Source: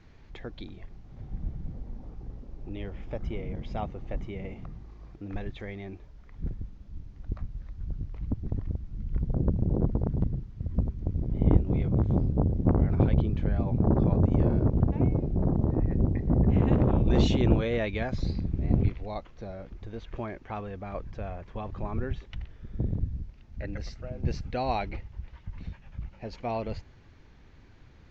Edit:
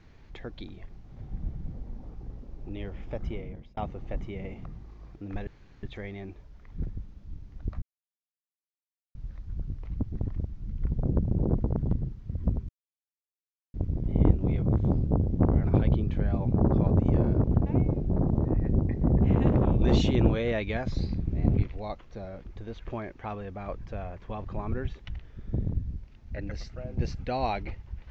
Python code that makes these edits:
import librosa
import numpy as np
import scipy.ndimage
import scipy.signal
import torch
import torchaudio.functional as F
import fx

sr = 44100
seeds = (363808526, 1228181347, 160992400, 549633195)

y = fx.edit(x, sr, fx.fade_out_span(start_s=3.29, length_s=0.48),
    fx.insert_room_tone(at_s=5.47, length_s=0.36),
    fx.insert_silence(at_s=7.46, length_s=1.33),
    fx.insert_silence(at_s=11.0, length_s=1.05), tone=tone)